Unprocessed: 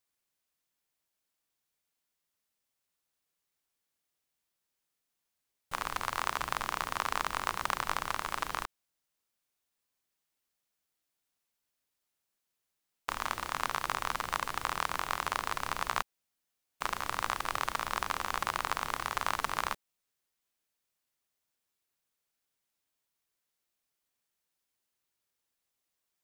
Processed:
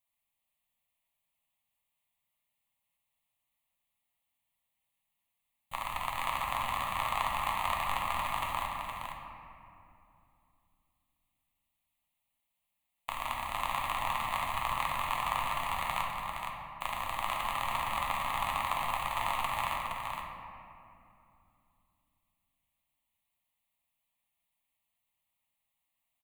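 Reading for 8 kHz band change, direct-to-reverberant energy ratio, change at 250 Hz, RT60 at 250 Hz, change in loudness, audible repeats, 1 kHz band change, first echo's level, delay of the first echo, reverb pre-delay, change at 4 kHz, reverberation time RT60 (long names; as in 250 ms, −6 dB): −4.0 dB, −2.5 dB, −1.0 dB, 3.8 s, +0.5 dB, 1, +2.0 dB, −5.5 dB, 467 ms, 7 ms, 0.0 dB, 2.7 s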